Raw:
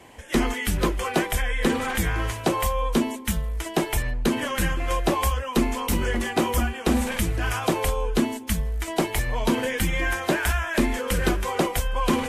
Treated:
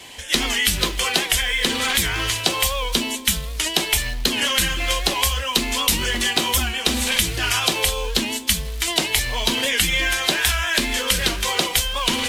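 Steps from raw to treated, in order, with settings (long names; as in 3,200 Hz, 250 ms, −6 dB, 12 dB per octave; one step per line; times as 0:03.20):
in parallel at −11 dB: floating-point word with a short mantissa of 2 bits
on the sum: parametric band 3,800 Hz +11 dB 1.4 octaves
downward compressor, threshold −19 dBFS, peak gain reduction 6.5 dB
high-shelf EQ 2,600 Hz +11 dB
on a send at −11 dB: convolution reverb, pre-delay 3 ms
on the sum: wow of a warped record 78 rpm, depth 100 cents
level −1.5 dB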